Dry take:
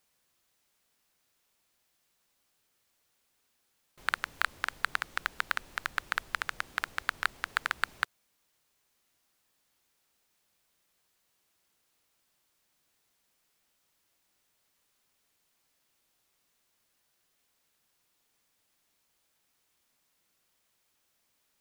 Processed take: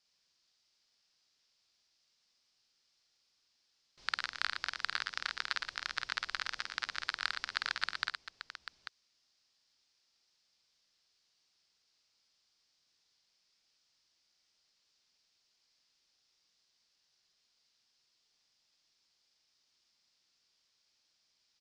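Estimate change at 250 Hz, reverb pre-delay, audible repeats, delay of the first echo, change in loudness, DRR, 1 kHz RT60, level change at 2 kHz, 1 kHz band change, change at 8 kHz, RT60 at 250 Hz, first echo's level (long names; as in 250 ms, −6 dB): −8.0 dB, no reverb audible, 4, 50 ms, −3.5 dB, no reverb audible, no reverb audible, −5.0 dB, −6.5 dB, −4.0 dB, no reverb audible, −4.5 dB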